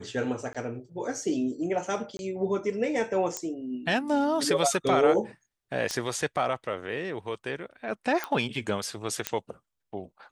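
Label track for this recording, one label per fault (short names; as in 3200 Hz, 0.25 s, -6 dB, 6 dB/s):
0.530000	0.550000	gap 16 ms
2.170000	2.190000	gap 21 ms
3.370000	3.370000	pop -15 dBFS
5.910000	5.910000	pop -16 dBFS
8.240000	8.240000	pop -15 dBFS
9.270000	9.270000	pop -9 dBFS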